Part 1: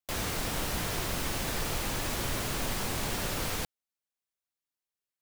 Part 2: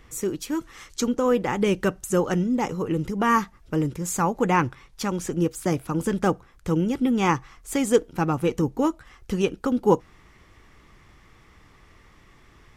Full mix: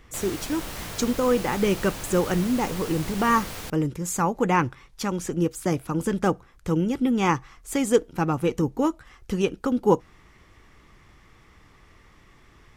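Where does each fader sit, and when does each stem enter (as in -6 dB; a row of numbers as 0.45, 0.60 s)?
-3.0, -0.5 dB; 0.05, 0.00 s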